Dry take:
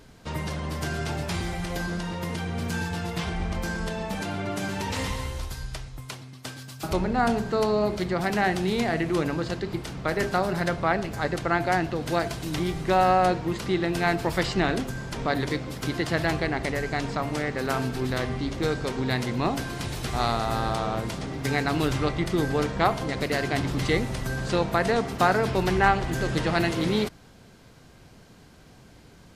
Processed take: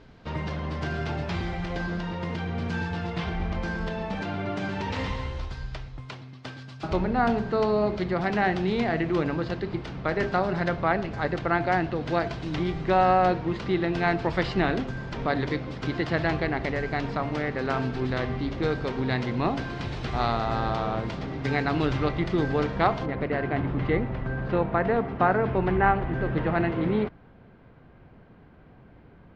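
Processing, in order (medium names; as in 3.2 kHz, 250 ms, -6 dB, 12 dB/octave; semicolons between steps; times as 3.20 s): Bessel low-pass 3.3 kHz, order 4, from 23.05 s 1.7 kHz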